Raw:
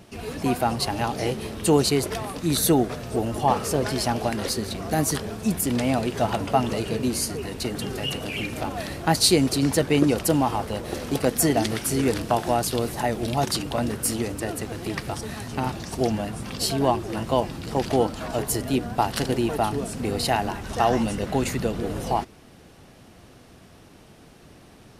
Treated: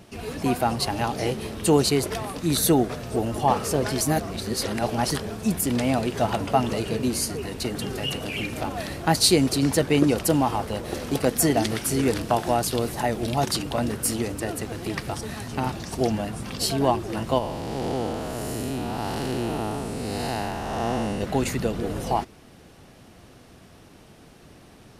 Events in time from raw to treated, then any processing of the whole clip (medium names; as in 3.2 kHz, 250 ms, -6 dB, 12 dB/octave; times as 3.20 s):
4.01–5.10 s: reverse
17.38–21.21 s: spectral blur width 314 ms